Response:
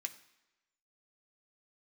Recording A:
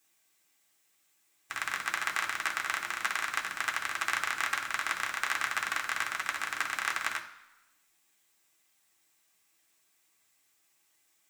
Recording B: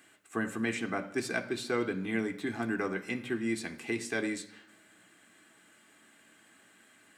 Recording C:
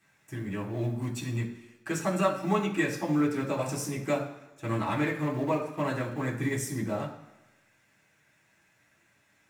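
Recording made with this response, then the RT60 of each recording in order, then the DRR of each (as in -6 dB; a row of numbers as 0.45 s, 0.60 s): B; 1.0 s, 1.0 s, 1.0 s; 0.5 dB, 5.5 dB, -6.0 dB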